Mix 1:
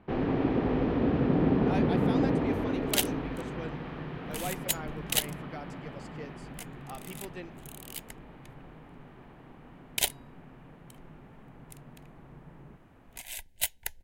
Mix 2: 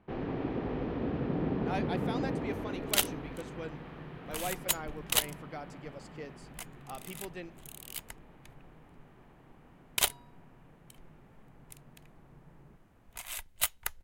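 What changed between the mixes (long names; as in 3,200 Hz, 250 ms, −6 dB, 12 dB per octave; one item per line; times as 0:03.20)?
first sound −6.5 dB
second sound: remove Butterworth band-reject 1,200 Hz, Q 1.8
master: add parametric band 260 Hz −3 dB 0.22 octaves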